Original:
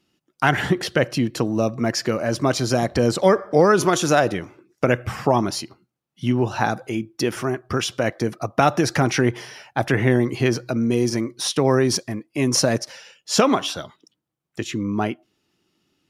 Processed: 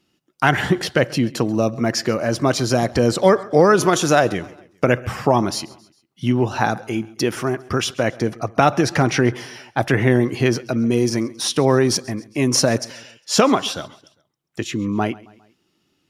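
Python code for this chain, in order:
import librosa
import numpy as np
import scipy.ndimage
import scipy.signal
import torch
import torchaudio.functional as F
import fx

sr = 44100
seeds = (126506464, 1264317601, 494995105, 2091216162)

p1 = fx.high_shelf(x, sr, hz=9200.0, db=-7.0, at=(8.05, 9.31))
p2 = p1 + fx.echo_feedback(p1, sr, ms=135, feedback_pct=49, wet_db=-22.0, dry=0)
y = p2 * 10.0 ** (2.0 / 20.0)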